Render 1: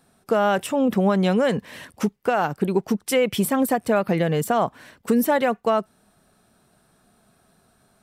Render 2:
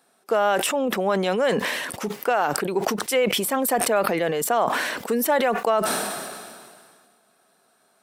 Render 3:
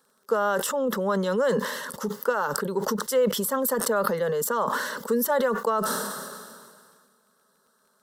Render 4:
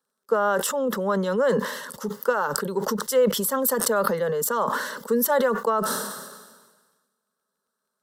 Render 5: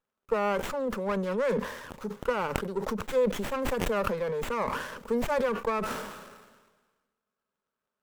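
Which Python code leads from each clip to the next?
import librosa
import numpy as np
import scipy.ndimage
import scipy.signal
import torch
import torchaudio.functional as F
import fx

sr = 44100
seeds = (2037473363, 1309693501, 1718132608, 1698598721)

y1 = scipy.signal.sosfilt(scipy.signal.butter(2, 380.0, 'highpass', fs=sr, output='sos'), x)
y1 = fx.sustainer(y1, sr, db_per_s=30.0)
y2 = fx.peak_eq(y1, sr, hz=9200.0, db=-6.5, octaves=0.21)
y2 = fx.fixed_phaser(y2, sr, hz=480.0, stages=8)
y2 = fx.dmg_crackle(y2, sr, seeds[0], per_s=22.0, level_db=-51.0)
y3 = fx.band_widen(y2, sr, depth_pct=40)
y3 = y3 * 10.0 ** (1.5 / 20.0)
y4 = fx.running_max(y3, sr, window=9)
y4 = y4 * 10.0 ** (-5.5 / 20.0)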